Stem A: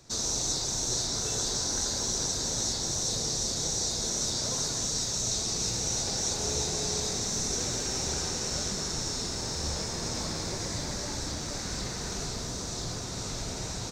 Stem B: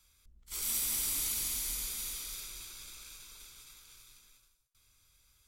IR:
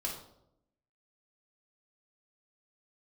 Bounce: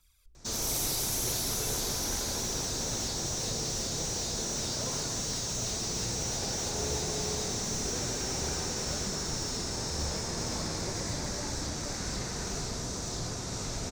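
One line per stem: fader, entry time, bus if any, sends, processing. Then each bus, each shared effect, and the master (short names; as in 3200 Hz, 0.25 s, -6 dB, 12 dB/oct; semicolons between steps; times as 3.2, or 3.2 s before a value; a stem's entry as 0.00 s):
0.0 dB, 0.35 s, no send, bell 3900 Hz -3.5 dB 0.59 oct; slew limiter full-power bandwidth 130 Hz
-4.5 dB, 0.00 s, send -17.5 dB, phaser 1.5 Hz, delay 2.8 ms, feedback 63%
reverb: on, RT60 0.80 s, pre-delay 3 ms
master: dry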